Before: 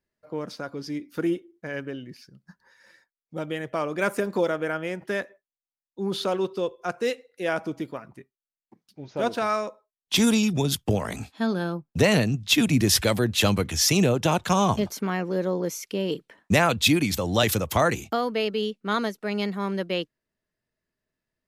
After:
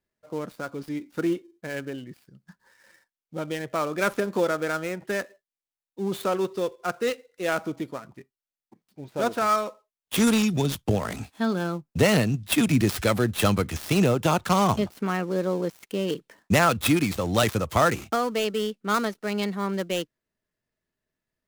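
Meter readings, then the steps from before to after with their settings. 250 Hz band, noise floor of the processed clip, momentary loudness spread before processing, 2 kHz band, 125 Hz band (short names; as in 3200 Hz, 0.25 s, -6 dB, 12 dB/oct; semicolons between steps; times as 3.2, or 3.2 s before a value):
0.0 dB, under -85 dBFS, 14 LU, -0.5 dB, 0.0 dB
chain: switching dead time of 0.084 ms; dynamic EQ 1300 Hz, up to +6 dB, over -46 dBFS, Q 6.5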